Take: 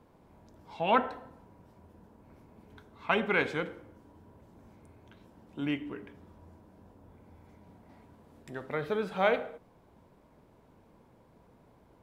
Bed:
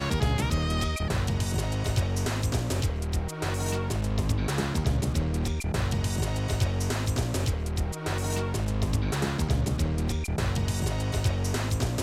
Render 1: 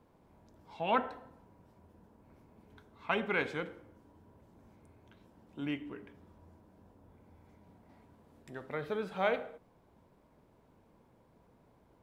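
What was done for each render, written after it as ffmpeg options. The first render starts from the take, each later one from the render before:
-af "volume=0.596"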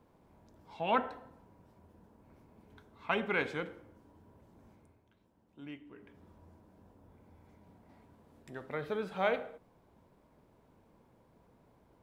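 -filter_complex "[0:a]asplit=3[s0][s1][s2];[s0]atrim=end=5.05,asetpts=PTS-STARTPTS,afade=t=out:st=4.7:d=0.35:silence=0.316228[s3];[s1]atrim=start=5.05:end=5.9,asetpts=PTS-STARTPTS,volume=0.316[s4];[s2]atrim=start=5.9,asetpts=PTS-STARTPTS,afade=t=in:d=0.35:silence=0.316228[s5];[s3][s4][s5]concat=n=3:v=0:a=1"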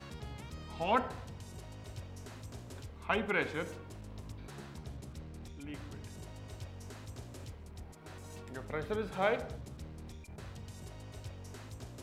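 -filter_complex "[1:a]volume=0.1[s0];[0:a][s0]amix=inputs=2:normalize=0"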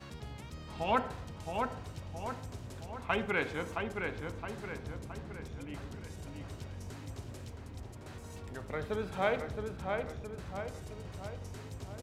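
-filter_complex "[0:a]asplit=2[s0][s1];[s1]adelay=668,lowpass=f=2700:p=1,volume=0.631,asplit=2[s2][s3];[s3]adelay=668,lowpass=f=2700:p=1,volume=0.54,asplit=2[s4][s5];[s5]adelay=668,lowpass=f=2700:p=1,volume=0.54,asplit=2[s6][s7];[s7]adelay=668,lowpass=f=2700:p=1,volume=0.54,asplit=2[s8][s9];[s9]adelay=668,lowpass=f=2700:p=1,volume=0.54,asplit=2[s10][s11];[s11]adelay=668,lowpass=f=2700:p=1,volume=0.54,asplit=2[s12][s13];[s13]adelay=668,lowpass=f=2700:p=1,volume=0.54[s14];[s0][s2][s4][s6][s8][s10][s12][s14]amix=inputs=8:normalize=0"

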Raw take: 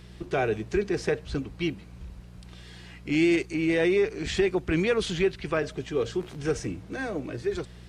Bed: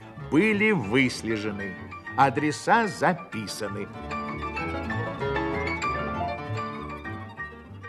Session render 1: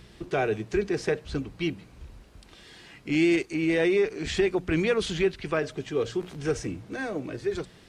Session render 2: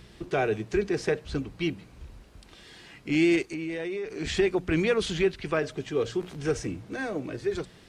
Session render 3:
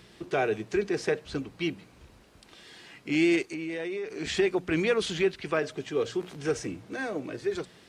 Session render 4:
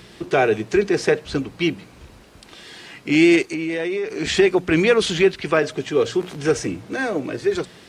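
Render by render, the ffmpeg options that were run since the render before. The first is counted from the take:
-af "bandreject=f=60:t=h:w=4,bandreject=f=120:t=h:w=4,bandreject=f=180:t=h:w=4"
-filter_complex "[0:a]asettb=1/sr,asplit=3[s0][s1][s2];[s0]atrim=end=3.454[s3];[s1]atrim=start=3.45:end=4.1,asetpts=PTS-STARTPTS,afade=t=in:d=0.004:c=qsin,afade=t=out:st=0.646:d=0.004:c=qsin,acompressor=threshold=0.0316:ratio=6:attack=3.2:release=140:knee=1:detection=peak[s4];[s2]atrim=start=4.096[s5];[s3][s4]acrossfade=d=0.004:c1=hsin:c2=qsin[s6];[s6][s5]acrossfade=d=0.004:c1=qsin:c2=hsin"
-af "highpass=f=200:p=1"
-af "volume=2.99"

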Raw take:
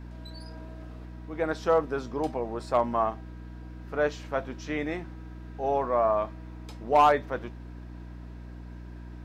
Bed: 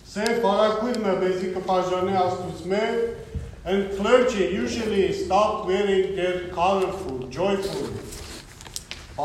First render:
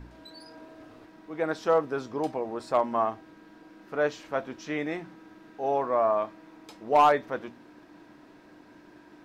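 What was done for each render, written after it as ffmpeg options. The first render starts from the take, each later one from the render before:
-af "bandreject=f=60:t=h:w=4,bandreject=f=120:t=h:w=4,bandreject=f=180:t=h:w=4,bandreject=f=240:t=h:w=4"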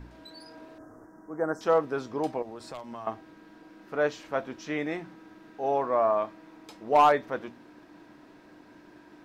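-filter_complex "[0:a]asettb=1/sr,asplit=3[s0][s1][s2];[s0]atrim=end=0.784[s3];[s1]atrim=start=0.78:end=1.61,asetpts=PTS-STARTPTS,afade=t=in:d=0.004:c=qsin,afade=t=out:st=0.826:d=0.004:c=qsin,asuperstop=centerf=3200:order=8:qfactor=0.74[s4];[s2]atrim=start=1.606[s5];[s3][s4]acrossfade=d=0.004:c1=hsin:c2=qsin[s6];[s6][s5]acrossfade=d=0.004:c1=qsin:c2=hsin,asettb=1/sr,asplit=3[s7][s8][s9];[s7]atrim=end=2.424[s10];[s8]atrim=start=2.42:end=3.07,asetpts=PTS-STARTPTS,afade=t=in:d=0.004:c=qsin,afade=t=out:st=0.646:d=0.004:c=qsin,acrossover=split=120|3000[s11][s12][s13];[s12]acompressor=threshold=0.0126:ratio=6:attack=3.2:release=140:knee=2.83:detection=peak[s14];[s11][s14][s13]amix=inputs=3:normalize=0[s15];[s9]atrim=start=3.066[s16];[s10][s15]acrossfade=d=0.004:c1=hsin:c2=qsin[s17];[s17][s16]acrossfade=d=0.004:c1=qsin:c2=hsin"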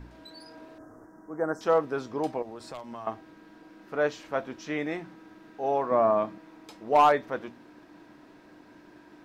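-filter_complex "[0:a]asettb=1/sr,asplit=3[s0][s1][s2];[s0]atrim=end=5.914[s3];[s1]atrim=start=5.91:end=6.38,asetpts=PTS-STARTPTS,afade=t=in:d=0.004:c=qsin,afade=t=out:st=0.466:d=0.004:c=qsin,equalizer=f=170:t=o:w=1.8:g=10.5[s4];[s2]atrim=start=6.376[s5];[s3][s4]acrossfade=d=0.004:c1=hsin:c2=qsin[s6];[s6][s5]acrossfade=d=0.004:c1=qsin:c2=hsin"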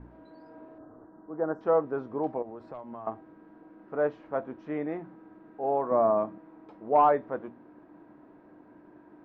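-af "lowpass=1100,lowshelf=f=88:g=-5.5"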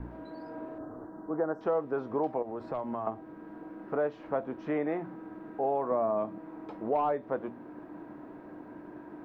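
-filter_complex "[0:a]acrossover=split=430|1200|2400[s0][s1][s2][s3];[s0]acompressor=threshold=0.00891:ratio=4[s4];[s1]acompressor=threshold=0.0178:ratio=4[s5];[s2]acompressor=threshold=0.00224:ratio=4[s6];[s3]acompressor=threshold=0.00112:ratio=4[s7];[s4][s5][s6][s7]amix=inputs=4:normalize=0,asplit=2[s8][s9];[s9]alimiter=level_in=2.24:limit=0.0631:level=0:latency=1:release=464,volume=0.447,volume=1.41[s10];[s8][s10]amix=inputs=2:normalize=0"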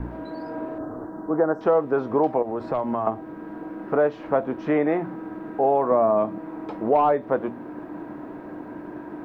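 -af "volume=2.99"

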